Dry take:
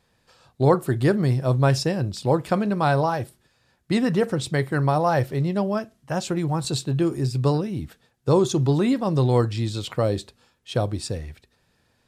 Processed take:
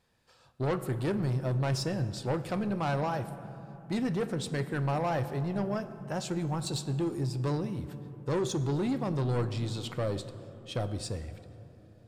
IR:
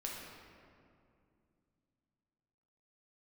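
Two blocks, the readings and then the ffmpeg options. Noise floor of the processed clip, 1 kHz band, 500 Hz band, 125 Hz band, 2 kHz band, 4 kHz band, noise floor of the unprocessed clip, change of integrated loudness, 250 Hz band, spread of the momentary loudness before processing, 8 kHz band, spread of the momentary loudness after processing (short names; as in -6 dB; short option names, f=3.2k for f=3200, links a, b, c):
-58 dBFS, -10.0 dB, -10.0 dB, -8.5 dB, -9.0 dB, -7.5 dB, -67 dBFS, -9.5 dB, -9.0 dB, 10 LU, -7.0 dB, 10 LU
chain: -filter_complex "[0:a]asoftclip=type=tanh:threshold=-19dB,asplit=2[a][b];[1:a]atrim=start_sample=2205,asetrate=26460,aresample=44100[c];[b][c]afir=irnorm=-1:irlink=0,volume=-11.5dB[d];[a][d]amix=inputs=2:normalize=0,volume=-8dB"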